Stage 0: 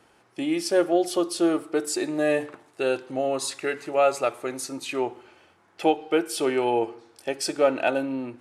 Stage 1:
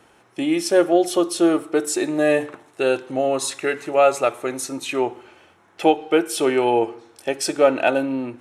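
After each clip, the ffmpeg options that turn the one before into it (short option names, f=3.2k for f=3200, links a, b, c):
-af "bandreject=f=4.7k:w=8.2,volume=5dB"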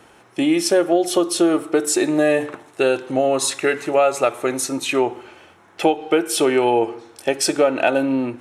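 -af "acompressor=threshold=-18dB:ratio=4,volume=5dB"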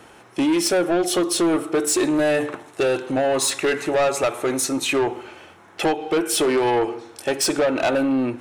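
-af "asoftclip=type=tanh:threshold=-17.5dB,volume=2.5dB"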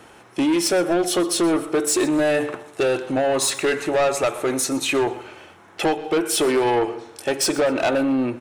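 -af "aecho=1:1:124|248|372:0.112|0.0359|0.0115"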